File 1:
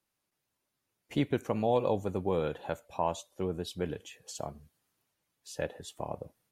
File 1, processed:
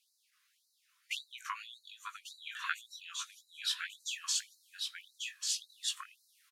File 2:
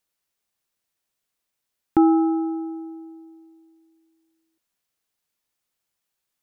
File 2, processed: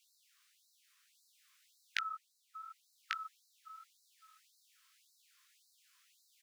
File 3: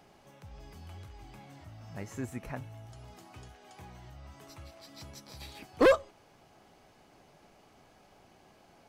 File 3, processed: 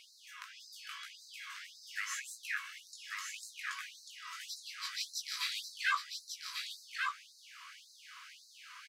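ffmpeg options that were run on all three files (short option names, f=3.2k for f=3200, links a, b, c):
-af "highshelf=f=8.1k:g=-10.5,acompressor=threshold=-36dB:ratio=6,flanger=delay=17:depth=3.9:speed=2.9,aecho=1:1:1143:0.596,afftfilt=real='re*gte(b*sr/1024,960*pow(3900/960,0.5+0.5*sin(2*PI*1.8*pts/sr)))':imag='im*gte(b*sr/1024,960*pow(3900/960,0.5+0.5*sin(2*PI*1.8*pts/sr)))':win_size=1024:overlap=0.75,volume=18dB"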